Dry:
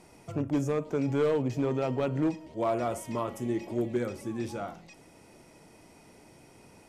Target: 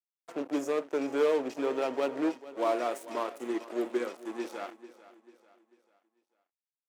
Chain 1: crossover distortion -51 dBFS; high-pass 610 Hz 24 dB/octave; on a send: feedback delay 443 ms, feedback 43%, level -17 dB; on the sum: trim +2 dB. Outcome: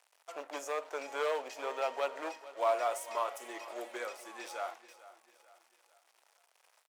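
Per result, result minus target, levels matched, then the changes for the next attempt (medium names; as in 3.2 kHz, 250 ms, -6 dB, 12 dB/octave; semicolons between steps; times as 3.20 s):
250 Hz band -14.0 dB; crossover distortion: distortion -9 dB
change: high-pass 300 Hz 24 dB/octave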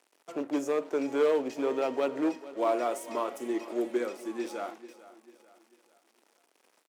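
crossover distortion: distortion -9 dB
change: crossover distortion -40.5 dBFS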